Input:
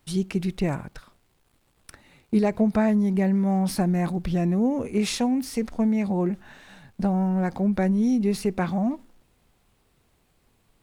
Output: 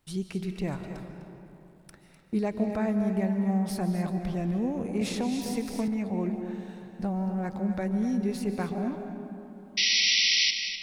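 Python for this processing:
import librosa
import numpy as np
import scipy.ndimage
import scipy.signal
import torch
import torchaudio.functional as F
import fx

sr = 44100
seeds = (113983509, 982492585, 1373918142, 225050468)

p1 = fx.spec_paint(x, sr, seeds[0], shape='noise', start_s=9.77, length_s=0.74, low_hz=1900.0, high_hz=5900.0, level_db=-17.0)
p2 = p1 + fx.echo_single(p1, sr, ms=252, db=-11.5, dry=0)
p3 = fx.rev_freeverb(p2, sr, rt60_s=3.2, hf_ratio=0.45, predelay_ms=105, drr_db=7.0)
p4 = fx.band_squash(p3, sr, depth_pct=100, at=(5.01, 5.88))
y = F.gain(torch.from_numpy(p4), -7.0).numpy()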